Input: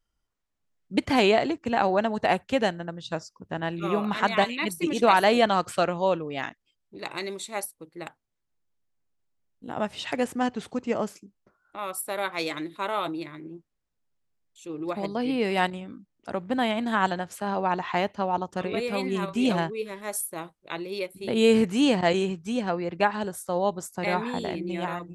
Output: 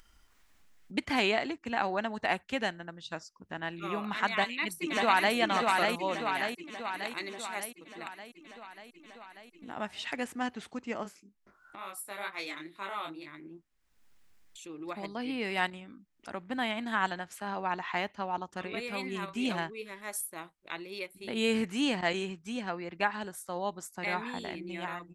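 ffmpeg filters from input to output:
ffmpeg -i in.wav -filter_complex "[0:a]asplit=2[link_01][link_02];[link_02]afade=type=in:start_time=4.31:duration=0.01,afade=type=out:start_time=5.36:duration=0.01,aecho=0:1:590|1180|1770|2360|2950|3540|4130|4720|5310:0.749894|0.449937|0.269962|0.161977|0.0971863|0.0583118|0.0349871|0.0209922|0.0125953[link_03];[link_01][link_03]amix=inputs=2:normalize=0,asettb=1/sr,asplit=3[link_04][link_05][link_06];[link_04]atrim=end=11.034[link_07];[link_05]atrim=start=11.03:end=13.28,asetpts=PTS-STARTPTS,afade=type=in:duration=0.004:curve=qsin,afade=type=out:start_time=2.246:duration=0.004:curve=qsin,flanger=delay=20:depth=5:speed=2.2[link_08];[link_06]atrim=start=13.276[link_09];[link_07][link_08]acrossfade=duration=0.004:curve1=hsin:curve2=qsin[link_10];[link_10][link_09]acrossfade=duration=0.004:curve1=qsin:curve2=hsin,equalizer=frequency=125:width_type=o:width=1:gain=-9,equalizer=frequency=500:width_type=o:width=1:gain=-6,equalizer=frequency=2000:width_type=o:width=1:gain=4,acompressor=mode=upward:threshold=-37dB:ratio=2.5,volume=-5.5dB" out.wav

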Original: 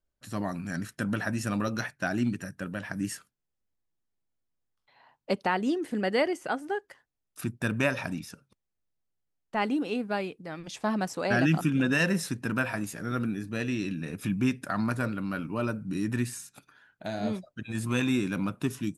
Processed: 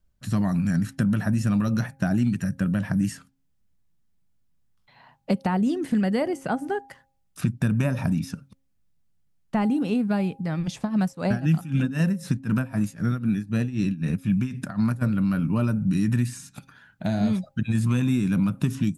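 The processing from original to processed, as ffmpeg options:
ffmpeg -i in.wav -filter_complex "[0:a]asplit=3[link_01][link_02][link_03];[link_01]afade=type=out:start_time=10.83:duration=0.02[link_04];[link_02]tremolo=f=3.9:d=0.88,afade=type=in:start_time=10.83:duration=0.02,afade=type=out:start_time=15.01:duration=0.02[link_05];[link_03]afade=type=in:start_time=15.01:duration=0.02[link_06];[link_04][link_05][link_06]amix=inputs=3:normalize=0,lowshelf=frequency=260:width_type=q:width=1.5:gain=9,bandreject=frequency=269.2:width_type=h:width=4,bandreject=frequency=538.4:width_type=h:width=4,bandreject=frequency=807.6:width_type=h:width=4,acrossover=split=1100|8000[link_07][link_08][link_09];[link_07]acompressor=threshold=-27dB:ratio=4[link_10];[link_08]acompressor=threshold=-46dB:ratio=4[link_11];[link_09]acompressor=threshold=-56dB:ratio=4[link_12];[link_10][link_11][link_12]amix=inputs=3:normalize=0,volume=6.5dB" out.wav

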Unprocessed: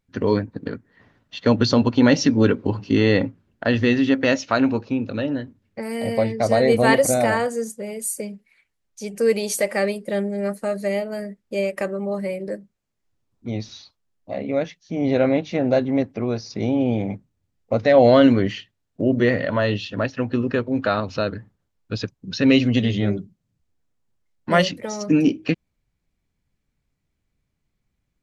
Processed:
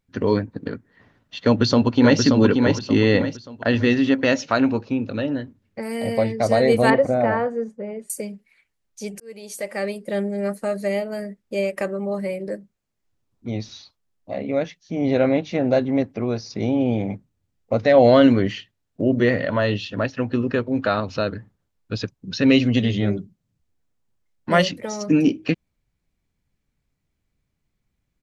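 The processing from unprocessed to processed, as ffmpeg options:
ffmpeg -i in.wav -filter_complex "[0:a]asplit=2[link_01][link_02];[link_02]afade=type=in:start_time=1.43:duration=0.01,afade=type=out:start_time=2.2:duration=0.01,aecho=0:1:580|1160|1740|2320:0.630957|0.220835|0.0772923|0.0270523[link_03];[link_01][link_03]amix=inputs=2:normalize=0,asettb=1/sr,asplit=3[link_04][link_05][link_06];[link_04]atrim=end=6.904[link_07];[link_05]atrim=start=6.9:end=8.1,asetpts=PTS-STARTPTS,afade=type=in:duration=0.004:curve=qsin,afade=type=out:start_time=1.196:duration=0.004:curve=qsin,lowpass=1600[link_08];[link_06]atrim=start=8.096[link_09];[link_07][link_08]acrossfade=duration=0.004:curve1=hsin:curve2=qsin[link_10];[link_10][link_09]acrossfade=duration=0.004:curve1=qsin:curve2=hsin,asplit=2[link_11][link_12];[link_11]atrim=end=9.2,asetpts=PTS-STARTPTS,afade=type=out:start_time=9.196:duration=0.004:curve=hsin[link_13];[link_12]atrim=start=9.2,asetpts=PTS-STARTPTS,afade=type=in:duration=1.05[link_14];[link_13][link_14]concat=n=2:v=0:a=1" out.wav

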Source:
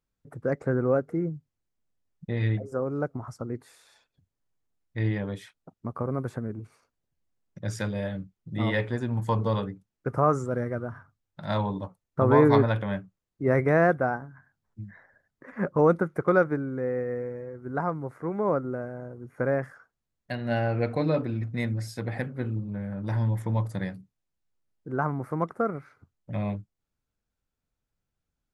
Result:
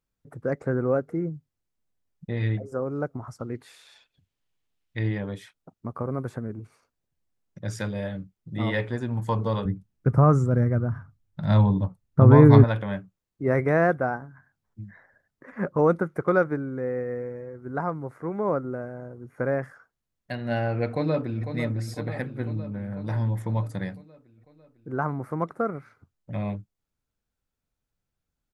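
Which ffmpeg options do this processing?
ffmpeg -i in.wav -filter_complex "[0:a]asplit=3[link_01][link_02][link_03];[link_01]afade=type=out:start_time=3.39:duration=0.02[link_04];[link_02]equalizer=frequency=3000:width_type=o:width=1.3:gain=10,afade=type=in:start_time=3.39:duration=0.02,afade=type=out:start_time=4.98:duration=0.02[link_05];[link_03]afade=type=in:start_time=4.98:duration=0.02[link_06];[link_04][link_05][link_06]amix=inputs=3:normalize=0,asettb=1/sr,asplit=3[link_07][link_08][link_09];[link_07]atrim=end=9.654[link_10];[link_08]atrim=start=9.65:end=12.64,asetpts=PTS-STARTPTS,afade=type=in:duration=0.004:curve=qsin,afade=type=out:start_time=2.986:duration=0.004:curve=qsin,bass=frequency=250:gain=13,treble=frequency=4000:gain=-1[link_11];[link_09]atrim=start=12.636[link_12];[link_10][link_11]acrossfade=duration=0.004:curve1=hsin:curve2=qsin[link_13];[link_13][link_12]acrossfade=duration=0.004:curve1=qsin:curve2=hsin,asplit=2[link_14][link_15];[link_15]afade=type=in:start_time=20.87:duration=0.01,afade=type=out:start_time=21.44:duration=0.01,aecho=0:1:500|1000|1500|2000|2500|3000|3500|4000|4500:0.354813|0.230629|0.149909|0.0974406|0.0633364|0.0411687|0.0267596|0.0173938|0.0113059[link_16];[link_14][link_16]amix=inputs=2:normalize=0" out.wav

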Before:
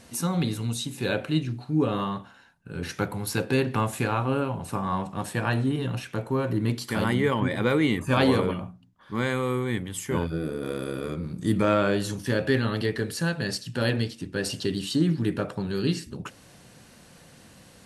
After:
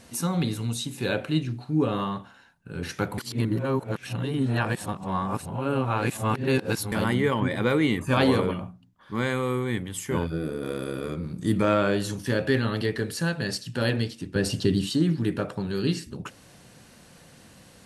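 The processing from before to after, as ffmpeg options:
ffmpeg -i in.wav -filter_complex "[0:a]asettb=1/sr,asplit=3[link_01][link_02][link_03];[link_01]atrim=end=14.354[link_04];[link_02]atrim=start=14.35:end=14.9,asetpts=PTS-STARTPTS,afade=type=in:duration=0.004:curve=qsin,afade=type=out:start_time=0.546:duration=0.004:curve=qsin,lowshelf=frequency=300:gain=9.5[link_05];[link_03]atrim=start=14.896[link_06];[link_04][link_05]acrossfade=duration=0.004:curve1=hsin:curve2=qsin[link_07];[link_07][link_06]acrossfade=duration=0.004:curve1=qsin:curve2=hsin,asplit=3[link_08][link_09][link_10];[link_08]atrim=end=3.182[link_11];[link_09]atrim=start=3.178:end=6.922,asetpts=PTS-STARTPTS,areverse[link_12];[link_10]atrim=start=6.918[link_13];[link_11][link_12]acrossfade=duration=0.004:curve1=hsin:curve2=hsin[link_14];[link_14][link_13]acrossfade=duration=0.004:curve1=hsin:curve2=hsin" out.wav

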